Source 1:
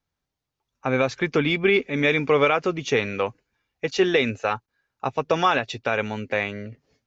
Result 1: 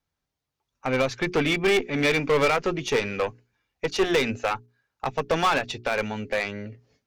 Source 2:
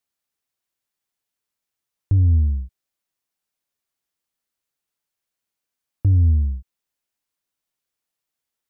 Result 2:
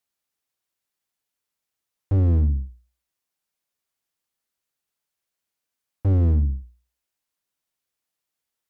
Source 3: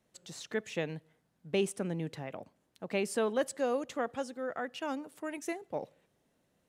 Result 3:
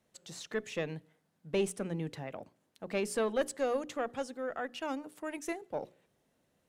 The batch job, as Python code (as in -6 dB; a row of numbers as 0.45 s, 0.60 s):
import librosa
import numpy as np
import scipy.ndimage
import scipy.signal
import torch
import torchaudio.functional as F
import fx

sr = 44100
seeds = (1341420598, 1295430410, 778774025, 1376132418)

y = fx.cheby_harmonics(x, sr, harmonics=(4,), levels_db=(-15,), full_scale_db=-7.5)
y = np.clip(10.0 ** (16.0 / 20.0) * y, -1.0, 1.0) / 10.0 ** (16.0 / 20.0)
y = fx.hum_notches(y, sr, base_hz=60, count=7)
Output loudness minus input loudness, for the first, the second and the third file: -2.0 LU, -2.5 LU, -0.5 LU